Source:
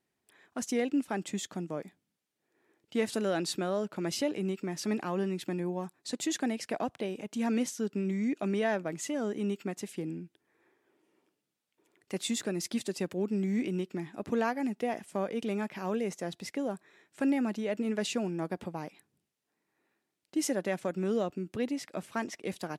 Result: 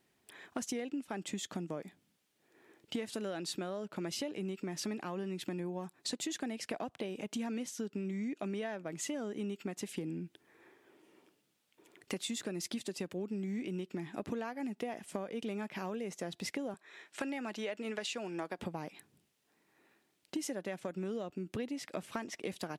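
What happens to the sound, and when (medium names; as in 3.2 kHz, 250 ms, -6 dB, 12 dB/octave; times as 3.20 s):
16.74–18.59 s: frequency weighting A
whole clip: peaking EQ 3.1 kHz +2.5 dB; compression 10:1, threshold -43 dBFS; trim +7.5 dB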